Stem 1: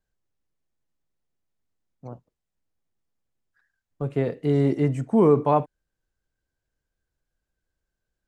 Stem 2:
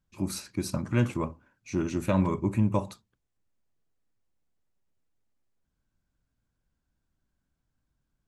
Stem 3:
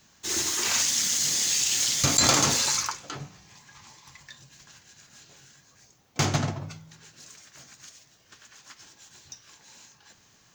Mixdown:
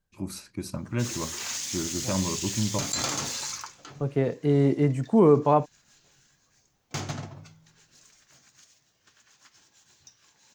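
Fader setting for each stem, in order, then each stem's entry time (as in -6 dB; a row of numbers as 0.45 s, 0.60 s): -0.5 dB, -3.5 dB, -8.5 dB; 0.00 s, 0.00 s, 0.75 s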